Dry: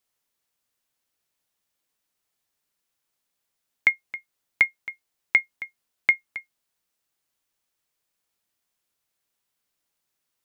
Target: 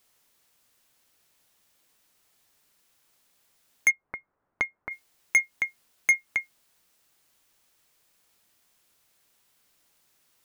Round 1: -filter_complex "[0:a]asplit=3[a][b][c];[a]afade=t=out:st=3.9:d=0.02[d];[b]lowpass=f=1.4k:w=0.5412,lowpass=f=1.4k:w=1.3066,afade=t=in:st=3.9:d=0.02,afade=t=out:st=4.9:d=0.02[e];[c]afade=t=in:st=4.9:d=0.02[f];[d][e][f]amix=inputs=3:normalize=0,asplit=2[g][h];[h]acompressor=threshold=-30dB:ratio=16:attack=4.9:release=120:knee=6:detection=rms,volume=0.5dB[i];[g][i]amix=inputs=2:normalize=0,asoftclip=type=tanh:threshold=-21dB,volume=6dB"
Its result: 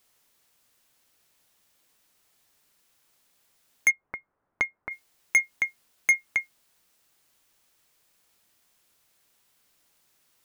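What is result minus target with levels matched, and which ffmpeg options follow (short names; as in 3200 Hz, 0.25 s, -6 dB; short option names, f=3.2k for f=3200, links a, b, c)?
compressor: peak gain reduction -6.5 dB
-filter_complex "[0:a]asplit=3[a][b][c];[a]afade=t=out:st=3.9:d=0.02[d];[b]lowpass=f=1.4k:w=0.5412,lowpass=f=1.4k:w=1.3066,afade=t=in:st=3.9:d=0.02,afade=t=out:st=4.9:d=0.02[e];[c]afade=t=in:st=4.9:d=0.02[f];[d][e][f]amix=inputs=3:normalize=0,asplit=2[g][h];[h]acompressor=threshold=-37dB:ratio=16:attack=4.9:release=120:knee=6:detection=rms,volume=0.5dB[i];[g][i]amix=inputs=2:normalize=0,asoftclip=type=tanh:threshold=-21dB,volume=6dB"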